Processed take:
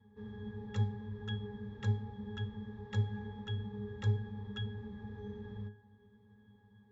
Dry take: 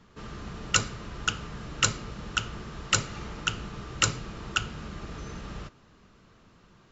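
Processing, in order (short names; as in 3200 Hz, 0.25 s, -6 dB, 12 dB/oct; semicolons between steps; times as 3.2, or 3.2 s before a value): octave resonator G#, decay 0.33 s; gain +8.5 dB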